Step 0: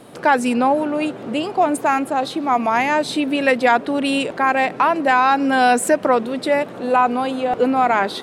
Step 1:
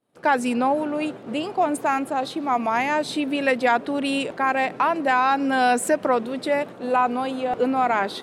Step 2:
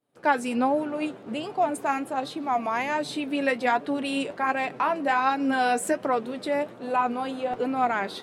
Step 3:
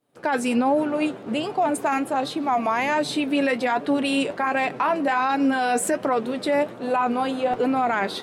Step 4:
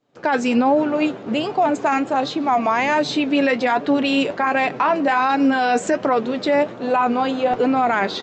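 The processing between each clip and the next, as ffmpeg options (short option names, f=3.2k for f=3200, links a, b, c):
-af "agate=range=-33dB:threshold=-27dB:ratio=3:detection=peak,volume=-4.5dB"
-af "flanger=delay=6.7:depth=4.1:regen=52:speed=1.3:shape=sinusoidal"
-af "alimiter=limit=-19.5dB:level=0:latency=1:release=10,volume=6dB"
-af "aresample=16000,aresample=44100,volume=4dB"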